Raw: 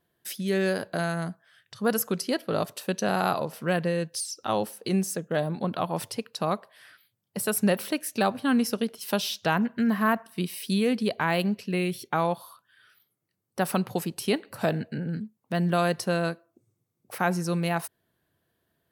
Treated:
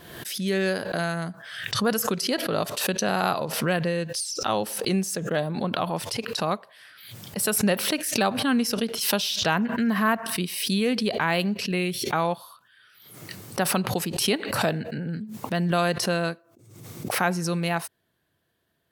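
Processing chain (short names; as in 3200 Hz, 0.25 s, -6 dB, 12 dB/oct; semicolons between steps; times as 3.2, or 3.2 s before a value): LPF 3700 Hz 6 dB/oct; high shelf 2400 Hz +9.5 dB; backwards sustainer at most 53 dB/s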